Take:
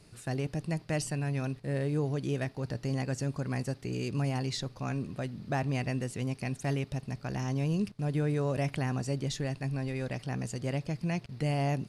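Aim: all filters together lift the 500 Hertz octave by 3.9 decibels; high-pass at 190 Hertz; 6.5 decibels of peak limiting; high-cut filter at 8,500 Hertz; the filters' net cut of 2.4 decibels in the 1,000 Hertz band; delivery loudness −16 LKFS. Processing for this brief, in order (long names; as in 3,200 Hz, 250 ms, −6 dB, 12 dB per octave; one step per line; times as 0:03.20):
high-pass filter 190 Hz
low-pass filter 8,500 Hz
parametric band 500 Hz +7 dB
parametric band 1,000 Hz −8.5 dB
level +20 dB
brickwall limiter −4 dBFS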